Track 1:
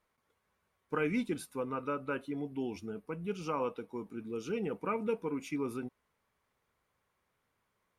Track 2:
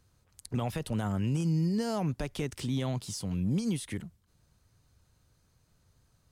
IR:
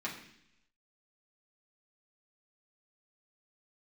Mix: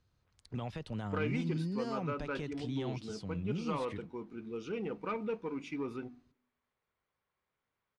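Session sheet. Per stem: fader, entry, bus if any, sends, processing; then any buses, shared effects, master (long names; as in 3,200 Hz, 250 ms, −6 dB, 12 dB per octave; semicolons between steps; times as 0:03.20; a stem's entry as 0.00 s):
−5.0 dB, 0.20 s, send −23 dB, hum removal 48.75 Hz, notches 7; leveller curve on the samples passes 1
−6.5 dB, 0.00 s, no send, no processing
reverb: on, RT60 0.70 s, pre-delay 3 ms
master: Chebyshev low-pass filter 4,100 Hz, order 2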